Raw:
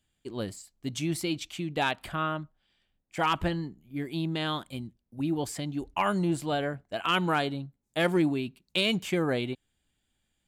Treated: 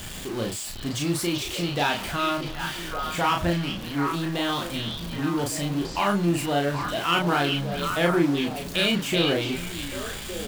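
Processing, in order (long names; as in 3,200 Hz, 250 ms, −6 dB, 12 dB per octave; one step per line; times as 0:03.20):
converter with a step at zero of −31.5 dBFS
double-tracking delay 35 ms −3 dB
echo through a band-pass that steps 387 ms, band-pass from 3,600 Hz, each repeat −1.4 octaves, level −1 dB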